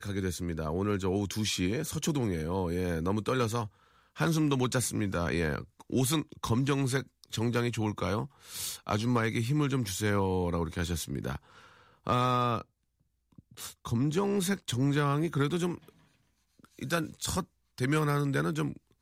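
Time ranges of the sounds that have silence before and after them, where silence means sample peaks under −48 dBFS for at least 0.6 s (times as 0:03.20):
0:13.38–0:15.89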